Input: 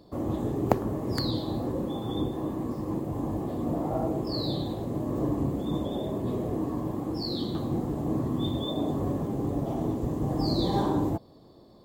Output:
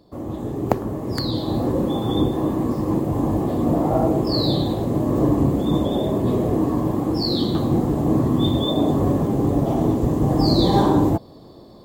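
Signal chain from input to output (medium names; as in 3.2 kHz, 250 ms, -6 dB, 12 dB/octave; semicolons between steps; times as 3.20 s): level rider gain up to 10 dB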